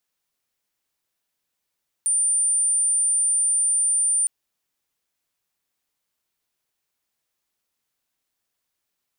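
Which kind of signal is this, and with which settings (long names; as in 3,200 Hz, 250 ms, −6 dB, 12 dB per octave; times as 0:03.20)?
tone sine 9,170 Hz −17.5 dBFS 2.21 s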